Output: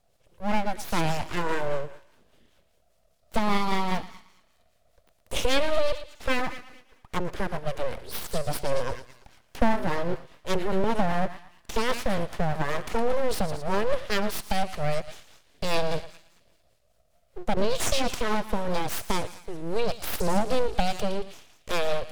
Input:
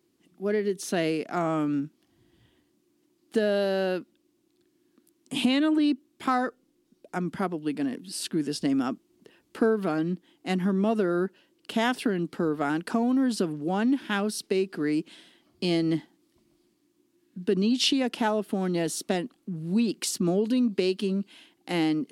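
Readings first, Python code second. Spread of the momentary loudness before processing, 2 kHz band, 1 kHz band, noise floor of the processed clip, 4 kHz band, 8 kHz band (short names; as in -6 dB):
9 LU, +2.0 dB, +4.0 dB, -65 dBFS, -1.0 dB, 0.0 dB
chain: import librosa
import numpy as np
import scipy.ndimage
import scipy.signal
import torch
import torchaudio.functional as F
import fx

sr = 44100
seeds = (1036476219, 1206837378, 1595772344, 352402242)

y = fx.echo_thinned(x, sr, ms=113, feedback_pct=55, hz=570.0, wet_db=-10)
y = fx.rotary(y, sr, hz=5.0)
y = np.abs(y)
y = F.gain(torch.from_numpy(y), 5.0).numpy()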